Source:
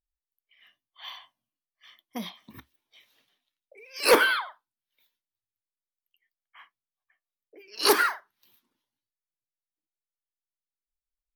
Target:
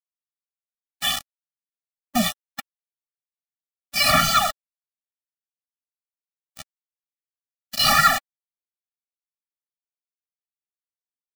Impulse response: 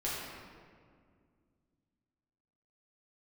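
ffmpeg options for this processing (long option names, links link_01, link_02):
-filter_complex "[0:a]asplit=2[link_01][link_02];[link_02]highpass=frequency=720:poles=1,volume=26dB,asoftclip=type=tanh:threshold=-8.5dB[link_03];[link_01][link_03]amix=inputs=2:normalize=0,lowpass=frequency=3400:poles=1,volume=-6dB,equalizer=frequency=160:width=7.5:gain=11.5,acrusher=bits=3:mix=0:aa=0.000001,afftfilt=real='re*eq(mod(floor(b*sr/1024/280),2),0)':imag='im*eq(mod(floor(b*sr/1024/280),2),0)':win_size=1024:overlap=0.75,volume=4dB"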